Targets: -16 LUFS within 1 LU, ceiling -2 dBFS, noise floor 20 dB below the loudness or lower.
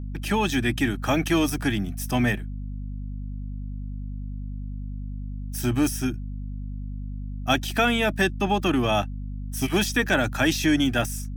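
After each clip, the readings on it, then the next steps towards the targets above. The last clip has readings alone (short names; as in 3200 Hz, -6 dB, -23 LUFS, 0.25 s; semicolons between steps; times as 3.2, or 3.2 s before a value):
hum 50 Hz; harmonics up to 250 Hz; hum level -30 dBFS; loudness -24.0 LUFS; peak -6.5 dBFS; loudness target -16.0 LUFS
-> de-hum 50 Hz, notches 5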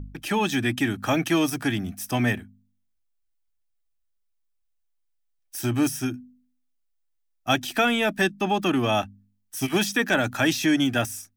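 hum none; loudness -24.0 LUFS; peak -7.0 dBFS; loudness target -16.0 LUFS
-> gain +8 dB; limiter -2 dBFS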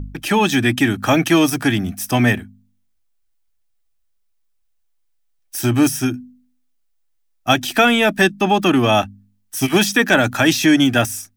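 loudness -16.5 LUFS; peak -2.0 dBFS; noise floor -64 dBFS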